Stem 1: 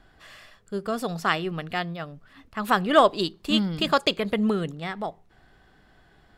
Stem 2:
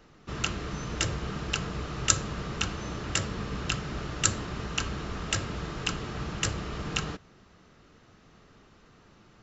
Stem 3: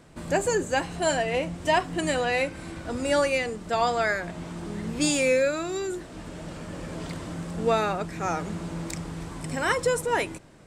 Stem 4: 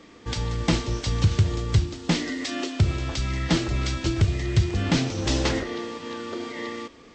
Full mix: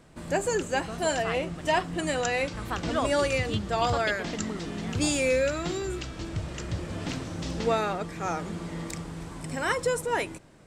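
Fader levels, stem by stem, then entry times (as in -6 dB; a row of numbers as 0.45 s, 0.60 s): -12.0 dB, -12.5 dB, -2.5 dB, -12.5 dB; 0.00 s, 0.15 s, 0.00 s, 2.15 s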